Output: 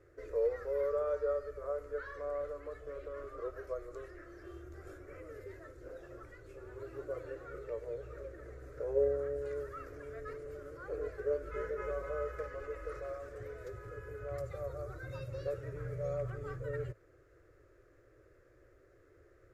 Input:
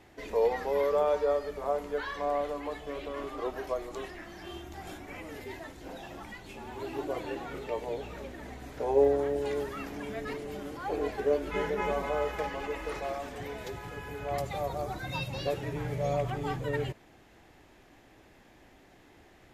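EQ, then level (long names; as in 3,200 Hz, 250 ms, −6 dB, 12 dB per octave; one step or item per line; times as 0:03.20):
dynamic equaliser 360 Hz, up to −7 dB, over −44 dBFS, Q 1.4
drawn EQ curve 120 Hz 0 dB, 220 Hz −24 dB, 350 Hz 0 dB, 540 Hz +4 dB, 830 Hz −24 dB, 1,300 Hz +1 dB, 3,200 Hz −22 dB, 4,700 Hz −14 dB, 7,200 Hz −11 dB, 14,000 Hz −14 dB
−3.0 dB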